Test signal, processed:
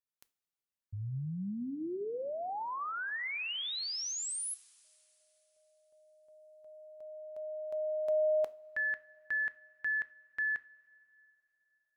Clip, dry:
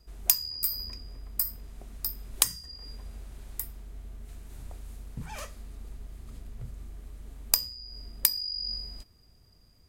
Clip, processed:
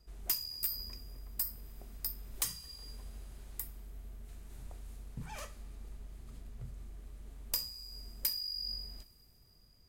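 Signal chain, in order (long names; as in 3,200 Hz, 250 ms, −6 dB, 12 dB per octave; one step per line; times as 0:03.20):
coupled-rooms reverb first 0.3 s, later 3.6 s, from −20 dB, DRR 13.5 dB
gain into a clipping stage and back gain 20 dB
level −5 dB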